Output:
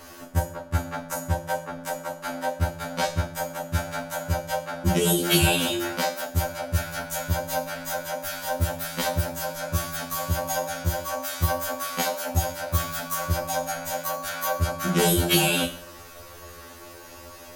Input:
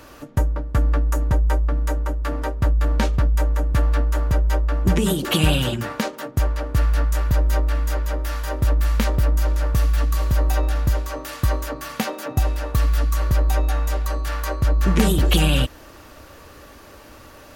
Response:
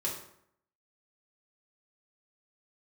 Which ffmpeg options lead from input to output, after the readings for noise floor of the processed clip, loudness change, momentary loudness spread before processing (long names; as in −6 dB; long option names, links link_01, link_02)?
−44 dBFS, −4.5 dB, 8 LU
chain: -filter_complex "[0:a]asplit=2[link_01][link_02];[link_02]bass=frequency=250:gain=-12,treble=frequency=4000:gain=9[link_03];[1:a]atrim=start_sample=2205[link_04];[link_03][link_04]afir=irnorm=-1:irlink=0,volume=-5.5dB[link_05];[link_01][link_05]amix=inputs=2:normalize=0,afftfilt=real='re*2*eq(mod(b,4),0)':imag='im*2*eq(mod(b,4),0)':win_size=2048:overlap=0.75,volume=-1.5dB"